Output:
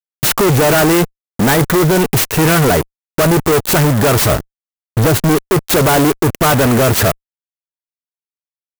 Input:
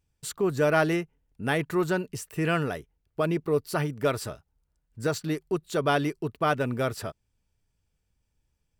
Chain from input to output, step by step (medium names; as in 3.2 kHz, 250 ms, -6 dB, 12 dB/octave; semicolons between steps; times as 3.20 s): 4.32–5.35 s: tilt shelf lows +6.5 dB, about 1.2 kHz; in parallel at +1 dB: compression, threshold -32 dBFS, peak gain reduction 14 dB; on the sum: fuzz box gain 45 dB, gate -41 dBFS; 1.53–1.99 s: careless resampling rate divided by 8×, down filtered, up hold; sampling jitter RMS 0.058 ms; trim +3.5 dB